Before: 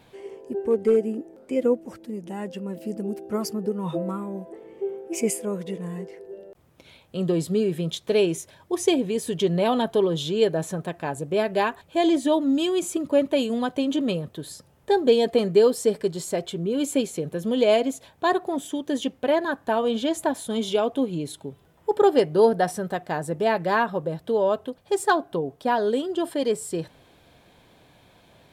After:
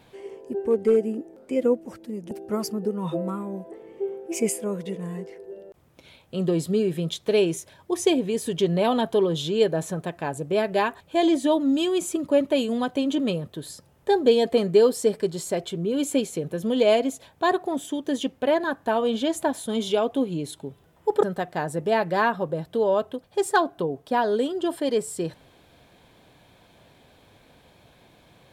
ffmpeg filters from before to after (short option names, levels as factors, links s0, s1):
-filter_complex "[0:a]asplit=3[s0][s1][s2];[s0]atrim=end=2.312[s3];[s1]atrim=start=3.118:end=22.042[s4];[s2]atrim=start=22.768[s5];[s3][s4]acrossfade=d=0.004:c1=hsin:c2=hsin[s6];[s6][s5]acrossfade=d=0.004:c1=hsin:c2=hsin"